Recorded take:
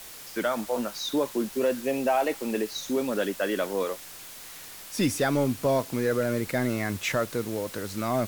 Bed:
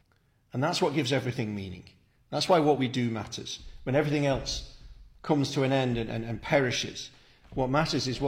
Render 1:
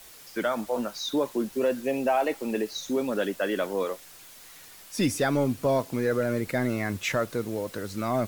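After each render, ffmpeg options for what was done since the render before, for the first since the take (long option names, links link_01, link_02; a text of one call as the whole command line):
ffmpeg -i in.wav -af "afftdn=noise_reduction=6:noise_floor=-44" out.wav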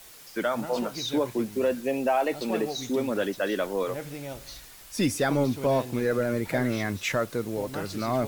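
ffmpeg -i in.wav -i bed.wav -filter_complex "[1:a]volume=-11.5dB[link_01];[0:a][link_01]amix=inputs=2:normalize=0" out.wav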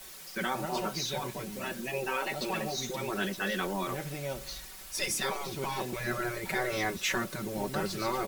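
ffmpeg -i in.wav -af "afftfilt=real='re*lt(hypot(re,im),0.178)':imag='im*lt(hypot(re,im),0.178)':win_size=1024:overlap=0.75,aecho=1:1:5.3:0.65" out.wav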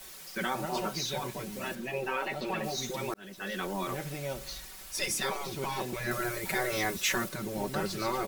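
ffmpeg -i in.wav -filter_complex "[0:a]asettb=1/sr,asplit=3[link_01][link_02][link_03];[link_01]atrim=end=1.754[link_04];[link_02]atrim=start=1.75:end=2.64,asetpts=PTS-STARTPTS,afade=type=in:duration=0.004:curve=qsin,afade=type=out:start_time=0.886:duration=0.004:curve=qsin,acrossover=split=3500[link_05][link_06];[link_06]acompressor=threshold=-52dB:ratio=4:attack=1:release=60[link_07];[link_05][link_07]amix=inputs=2:normalize=0[link_08];[link_03]atrim=start=2.636[link_09];[link_04][link_08]acrossfade=duration=0.004:curve1=hsin:curve2=qsin[link_10];[link_10][link_09]acrossfade=duration=0.004:curve1=qsin:curve2=hsin,asettb=1/sr,asplit=3[link_11][link_12][link_13];[link_11]atrim=end=6.114[link_14];[link_12]atrim=start=6.11:end=7.29,asetpts=PTS-STARTPTS,afade=type=in:duration=0.004:curve=qsin,afade=type=out:start_time=1.176:duration=0.004:curve=qsin,highshelf=frequency=6100:gain=7[link_15];[link_13]atrim=start=7.286[link_16];[link_14][link_15]acrossfade=duration=0.004:curve1=hsin:curve2=qsin[link_17];[link_17][link_16]acrossfade=duration=0.004:curve1=qsin:curve2=hsin,asplit=2[link_18][link_19];[link_18]atrim=end=3.14,asetpts=PTS-STARTPTS,afade=type=out:start_time=3.136:duration=0.004:curve=hsin[link_20];[link_19]atrim=start=3.14,asetpts=PTS-STARTPTS,afade=type=in:duration=0.89:curve=qsin[link_21];[link_20][link_21]concat=n=2:v=0:a=1" out.wav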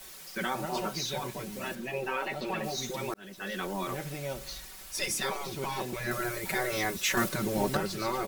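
ffmpeg -i in.wav -filter_complex "[0:a]asettb=1/sr,asplit=3[link_01][link_02][link_03];[link_01]atrim=end=7.174[link_04];[link_02]atrim=start=7.17:end=7.77,asetpts=PTS-STARTPTS,afade=type=in:duration=0.004:curve=qsin,afade=type=out:start_time=0.596:duration=0.004:curve=qsin,acontrast=35[link_05];[link_03]atrim=start=7.766[link_06];[link_04][link_05]acrossfade=duration=0.004:curve1=hsin:curve2=qsin[link_07];[link_07][link_06]acrossfade=duration=0.004:curve1=qsin:curve2=hsin" out.wav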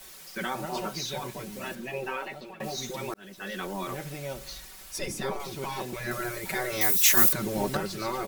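ffmpeg -i in.wav -filter_complex "[0:a]asettb=1/sr,asplit=3[link_01][link_02][link_03];[link_01]atrim=end=4.984[link_04];[link_02]atrim=start=4.98:end=5.4,asetpts=PTS-STARTPTS,afade=type=in:duration=0.004:curve=qsin,afade=type=out:start_time=0.416:duration=0.004:curve=qsin,tiltshelf=frequency=870:gain=6.5[link_05];[link_03]atrim=start=5.396[link_06];[link_04][link_05]acrossfade=duration=0.004:curve1=hsin:curve2=qsin[link_07];[link_07][link_06]acrossfade=duration=0.004:curve1=qsin:curve2=hsin,asettb=1/sr,asplit=3[link_08][link_09][link_10];[link_08]atrim=end=6.814[link_11];[link_09]atrim=start=6.81:end=7.33,asetpts=PTS-STARTPTS,afade=type=in:duration=0.004:curve=qsin,afade=type=out:start_time=0.516:duration=0.004:curve=qsin,aemphasis=mode=production:type=75fm[link_12];[link_10]atrim=start=7.326[link_13];[link_11][link_12]acrossfade=duration=0.004:curve1=hsin:curve2=qsin[link_14];[link_14][link_13]acrossfade=duration=0.004:curve1=qsin:curve2=hsin,asplit=2[link_15][link_16];[link_15]atrim=end=2.6,asetpts=PTS-STARTPTS,afade=type=out:start_time=2.08:duration=0.52:silence=0.125893[link_17];[link_16]atrim=start=2.6,asetpts=PTS-STARTPTS,afade=type=in:duration=0.004:curve=hsin:silence=0.125893[link_18];[link_17][link_18]concat=n=2:v=0:a=1" out.wav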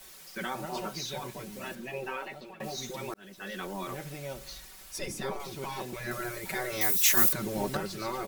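ffmpeg -i in.wav -af "volume=-3dB" out.wav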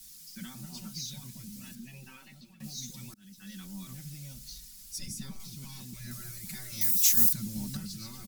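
ffmpeg -i in.wav -af "firequalizer=gain_entry='entry(230,0);entry(390,-27);entry(1400,-17);entry(4900,1)':delay=0.05:min_phase=1" out.wav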